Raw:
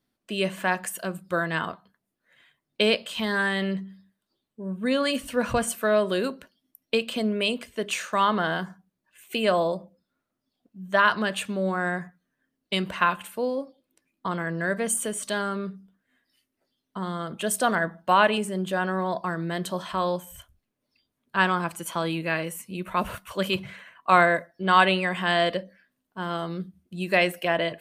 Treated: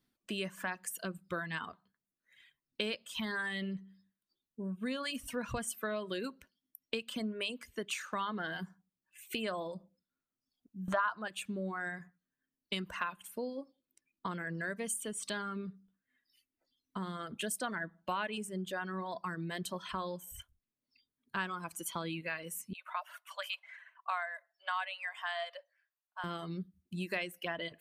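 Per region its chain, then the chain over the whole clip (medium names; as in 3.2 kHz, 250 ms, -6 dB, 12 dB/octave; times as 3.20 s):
10.88–11.28 s: low-pass 11 kHz + high-order bell 910 Hz +14 dB + upward compressor, threshold -19 dBFS
22.73–26.24 s: steep high-pass 610 Hz 72 dB/octave + treble shelf 2.7 kHz -8 dB
whole clip: reverb removal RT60 1.4 s; peaking EQ 630 Hz -5.5 dB 1.1 oct; compression 3:1, threshold -36 dBFS; trim -1 dB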